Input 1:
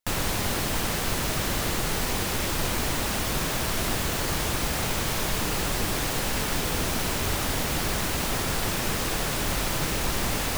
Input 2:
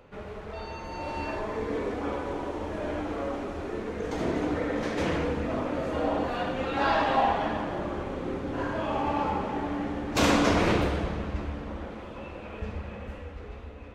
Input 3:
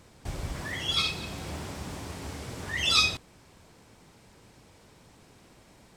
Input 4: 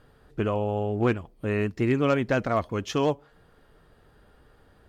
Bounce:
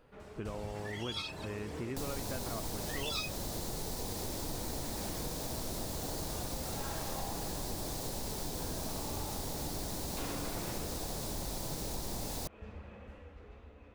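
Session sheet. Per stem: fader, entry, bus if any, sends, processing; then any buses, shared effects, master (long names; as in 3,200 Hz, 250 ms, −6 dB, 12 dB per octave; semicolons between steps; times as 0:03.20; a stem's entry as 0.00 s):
−3.0 dB, 1.90 s, no send, flat-topped bell 1,900 Hz −11 dB
−11.5 dB, 0.00 s, no send, no processing
−3.5 dB, 0.20 s, no send, reverb reduction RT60 0.57 s
−9.5 dB, 0.00 s, no send, no processing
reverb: not used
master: downward compressor 2.5 to 1, threshold −39 dBFS, peak gain reduction 12.5 dB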